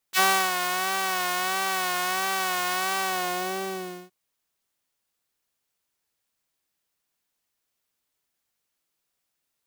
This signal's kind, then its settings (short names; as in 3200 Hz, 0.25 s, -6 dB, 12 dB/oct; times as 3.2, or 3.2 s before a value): synth patch with vibrato F#3, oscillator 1 triangle, oscillator 2 saw, interval +12 st, detune 9 cents, oscillator 2 level -3 dB, sub -27.5 dB, noise -15 dB, filter highpass, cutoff 270 Hz, Q 1.2, filter envelope 4 oct, filter decay 0.06 s, filter sustain 45%, attack 41 ms, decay 0.34 s, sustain -8 dB, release 1.14 s, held 2.83 s, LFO 1.5 Hz, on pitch 59 cents